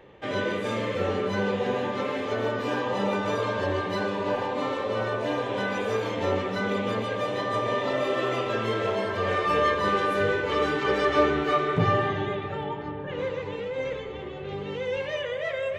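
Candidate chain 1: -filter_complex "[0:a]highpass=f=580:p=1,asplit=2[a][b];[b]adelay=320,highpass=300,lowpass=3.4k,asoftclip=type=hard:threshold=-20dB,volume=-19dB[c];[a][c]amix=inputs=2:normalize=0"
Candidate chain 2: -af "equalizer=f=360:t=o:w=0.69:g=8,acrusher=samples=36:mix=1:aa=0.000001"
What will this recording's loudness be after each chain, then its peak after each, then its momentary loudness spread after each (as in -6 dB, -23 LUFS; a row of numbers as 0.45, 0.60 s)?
-29.5, -24.5 LUFS; -11.5, -8.5 dBFS; 10, 7 LU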